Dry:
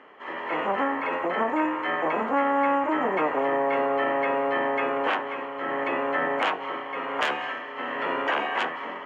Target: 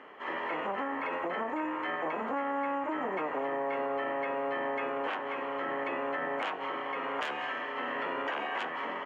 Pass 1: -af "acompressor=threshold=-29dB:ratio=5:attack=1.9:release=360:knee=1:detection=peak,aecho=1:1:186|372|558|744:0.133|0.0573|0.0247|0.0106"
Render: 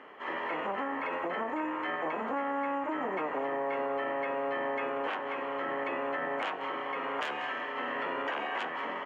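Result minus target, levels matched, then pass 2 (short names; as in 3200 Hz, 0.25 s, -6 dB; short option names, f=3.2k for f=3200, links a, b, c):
echo-to-direct +7 dB
-af "acompressor=threshold=-29dB:ratio=5:attack=1.9:release=360:knee=1:detection=peak,aecho=1:1:186|372|558:0.0596|0.0256|0.011"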